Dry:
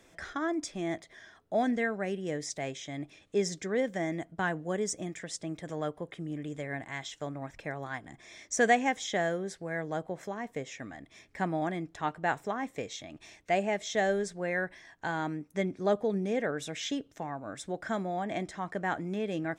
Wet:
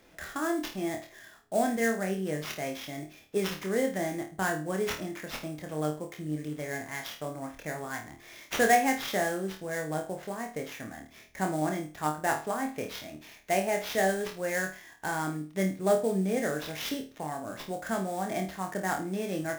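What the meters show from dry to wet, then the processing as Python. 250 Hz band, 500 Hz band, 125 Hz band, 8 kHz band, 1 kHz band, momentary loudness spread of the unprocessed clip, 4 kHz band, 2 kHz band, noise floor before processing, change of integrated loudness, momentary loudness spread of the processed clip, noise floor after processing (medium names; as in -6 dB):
+1.5 dB, +1.5 dB, +2.0 dB, +2.0 dB, +2.0 dB, 11 LU, +2.0 dB, +1.5 dB, -62 dBFS, +2.0 dB, 11 LU, -54 dBFS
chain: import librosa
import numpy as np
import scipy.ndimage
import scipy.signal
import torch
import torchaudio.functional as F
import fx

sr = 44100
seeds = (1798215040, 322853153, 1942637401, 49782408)

y = fx.sample_hold(x, sr, seeds[0], rate_hz=8700.0, jitter_pct=20)
y = fx.room_flutter(y, sr, wall_m=4.5, rt60_s=0.33)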